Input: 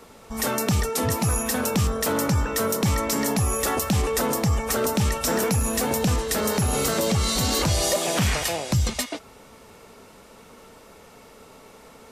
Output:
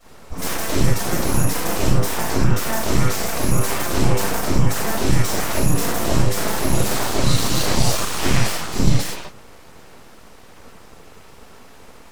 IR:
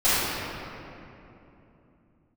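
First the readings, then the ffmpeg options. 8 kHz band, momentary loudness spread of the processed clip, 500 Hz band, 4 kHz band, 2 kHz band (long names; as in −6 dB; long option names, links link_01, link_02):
+1.0 dB, 3 LU, +0.5 dB, +2.5 dB, +3.0 dB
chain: -filter_complex "[0:a]bass=frequency=250:gain=5,treble=frequency=4000:gain=1[link_01];[1:a]atrim=start_sample=2205,atrim=end_sample=6174[link_02];[link_01][link_02]afir=irnorm=-1:irlink=0,aeval=exprs='abs(val(0))':channel_layout=same,volume=-12.5dB"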